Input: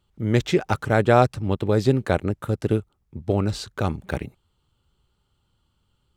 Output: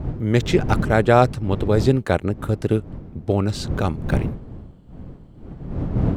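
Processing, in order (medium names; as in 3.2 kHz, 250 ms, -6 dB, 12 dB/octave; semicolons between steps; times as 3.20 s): wind noise 180 Hz -29 dBFS; trim +2 dB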